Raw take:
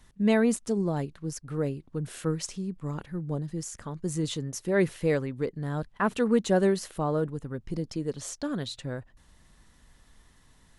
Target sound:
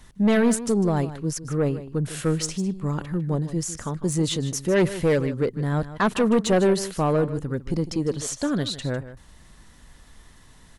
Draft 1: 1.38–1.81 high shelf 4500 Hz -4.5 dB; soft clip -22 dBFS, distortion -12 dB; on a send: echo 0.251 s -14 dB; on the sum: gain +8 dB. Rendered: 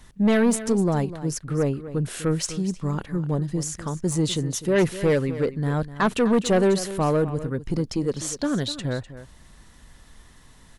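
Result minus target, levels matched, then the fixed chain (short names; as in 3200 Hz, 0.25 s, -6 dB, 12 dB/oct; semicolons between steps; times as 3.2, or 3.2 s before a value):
echo 99 ms late
1.38–1.81 high shelf 4500 Hz -4.5 dB; soft clip -22 dBFS, distortion -12 dB; on a send: echo 0.152 s -14 dB; on the sum: gain +8 dB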